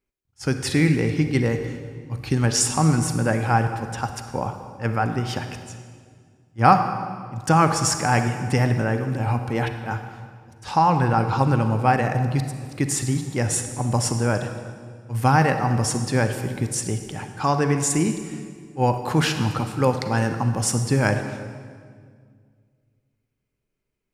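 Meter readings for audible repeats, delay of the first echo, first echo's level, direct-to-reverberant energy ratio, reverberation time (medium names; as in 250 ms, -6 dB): no echo, no echo, no echo, 7.0 dB, 1.9 s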